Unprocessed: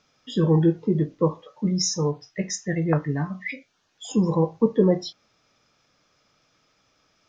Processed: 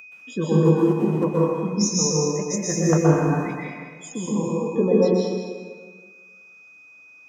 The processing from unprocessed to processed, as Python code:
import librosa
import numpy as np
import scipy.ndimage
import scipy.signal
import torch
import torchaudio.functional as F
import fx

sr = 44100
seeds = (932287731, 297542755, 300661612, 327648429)

y = x + 10.0 ** (-30.0 / 20.0) * np.sin(2.0 * np.pi * 2500.0 * np.arange(len(x)) / sr)
y = fx.level_steps(y, sr, step_db=12, at=(4.08, 4.67))
y = fx.dereverb_blind(y, sr, rt60_s=1.6)
y = fx.clip_hard(y, sr, threshold_db=-19.0, at=(0.58, 1.23), fade=0.02)
y = scipy.signal.sosfilt(scipy.signal.butter(2, 170.0, 'highpass', fs=sr, output='sos'), y)
y = fx.high_shelf(y, sr, hz=5200.0, db=7.0)
y = y + 10.0 ** (-10.0 / 20.0) * np.pad(y, (int(199 * sr / 1000.0), 0))[:len(y)]
y = fx.leveller(y, sr, passes=1, at=(2.57, 3.3))
y = fx.band_shelf(y, sr, hz=3000.0, db=-10.0, octaves=1.7)
y = fx.rev_plate(y, sr, seeds[0], rt60_s=1.6, hf_ratio=0.7, predelay_ms=110, drr_db=-5.5)
y = y * librosa.db_to_amplitude(-2.5)